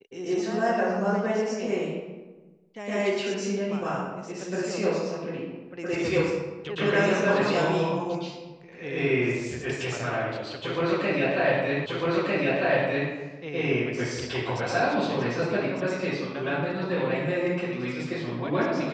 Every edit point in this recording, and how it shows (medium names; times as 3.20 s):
11.86 s: repeat of the last 1.25 s